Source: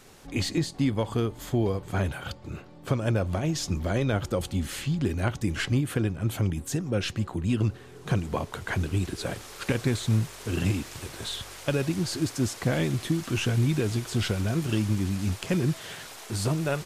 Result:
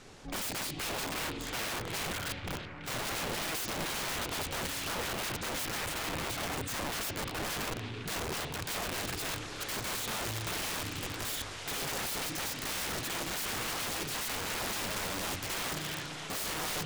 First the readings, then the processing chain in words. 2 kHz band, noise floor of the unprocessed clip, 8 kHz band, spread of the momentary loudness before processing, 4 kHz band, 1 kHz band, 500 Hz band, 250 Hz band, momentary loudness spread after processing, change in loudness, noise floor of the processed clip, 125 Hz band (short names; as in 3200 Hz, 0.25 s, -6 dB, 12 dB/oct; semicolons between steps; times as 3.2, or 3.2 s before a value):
0.0 dB, -47 dBFS, +2.0 dB, 8 LU, +1.0 dB, +0.5 dB, -9.0 dB, -14.0 dB, 3 LU, -6.0 dB, -42 dBFS, -17.0 dB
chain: LPF 7300 Hz 12 dB/oct; FDN reverb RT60 2 s, low-frequency decay 1.25×, high-frequency decay 0.4×, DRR 16.5 dB; wrapped overs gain 31 dB; delay with a stepping band-pass 0.332 s, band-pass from 2900 Hz, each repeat -0.7 oct, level -6 dB